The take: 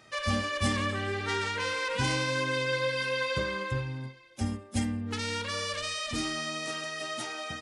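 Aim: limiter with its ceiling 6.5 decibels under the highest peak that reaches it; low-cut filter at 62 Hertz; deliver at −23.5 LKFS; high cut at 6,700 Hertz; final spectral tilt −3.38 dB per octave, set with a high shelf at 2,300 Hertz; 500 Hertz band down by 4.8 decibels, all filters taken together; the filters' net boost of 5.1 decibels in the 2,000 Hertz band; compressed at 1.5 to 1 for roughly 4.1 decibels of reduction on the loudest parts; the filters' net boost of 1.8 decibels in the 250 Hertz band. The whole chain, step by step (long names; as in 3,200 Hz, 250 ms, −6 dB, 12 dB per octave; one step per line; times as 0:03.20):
high-pass filter 62 Hz
low-pass filter 6,700 Hz
parametric band 250 Hz +3.5 dB
parametric band 500 Hz −6.5 dB
parametric band 2,000 Hz +4.5 dB
high-shelf EQ 2,300 Hz +4.5 dB
downward compressor 1.5 to 1, threshold −33 dBFS
level +8.5 dB
brickwall limiter −13.5 dBFS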